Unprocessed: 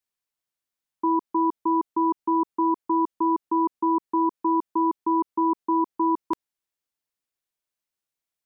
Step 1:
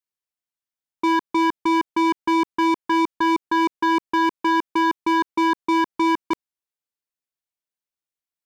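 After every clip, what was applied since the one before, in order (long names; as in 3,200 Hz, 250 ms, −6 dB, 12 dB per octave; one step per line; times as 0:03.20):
leveller curve on the samples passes 3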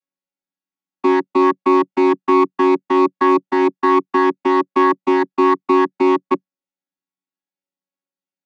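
channel vocoder with a chord as carrier bare fifth, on F#3
level +7 dB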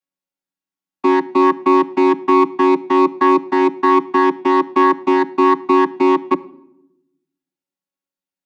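rectangular room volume 2,600 cubic metres, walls furnished, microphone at 0.52 metres
level +1 dB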